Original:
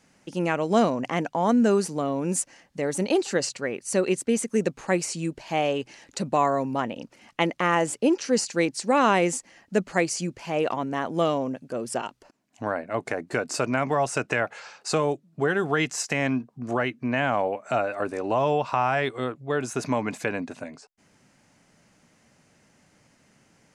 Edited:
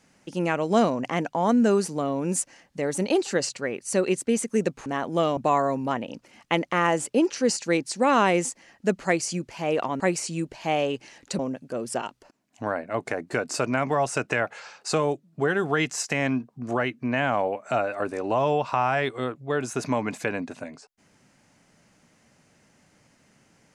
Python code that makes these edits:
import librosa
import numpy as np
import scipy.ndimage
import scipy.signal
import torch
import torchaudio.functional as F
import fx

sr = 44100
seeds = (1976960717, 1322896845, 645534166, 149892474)

y = fx.edit(x, sr, fx.swap(start_s=4.86, length_s=1.39, other_s=10.88, other_length_s=0.51), tone=tone)